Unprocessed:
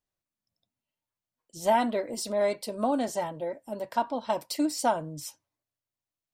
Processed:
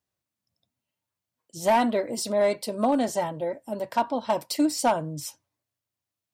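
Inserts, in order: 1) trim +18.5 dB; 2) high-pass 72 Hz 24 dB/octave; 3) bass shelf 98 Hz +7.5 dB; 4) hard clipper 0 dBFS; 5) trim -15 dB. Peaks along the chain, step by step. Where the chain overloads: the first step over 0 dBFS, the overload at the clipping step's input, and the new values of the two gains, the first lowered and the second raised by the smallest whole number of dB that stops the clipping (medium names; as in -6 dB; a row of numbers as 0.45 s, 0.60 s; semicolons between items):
+5.5 dBFS, +5.5 dBFS, +5.5 dBFS, 0.0 dBFS, -15.0 dBFS; step 1, 5.5 dB; step 1 +12.5 dB, step 5 -9 dB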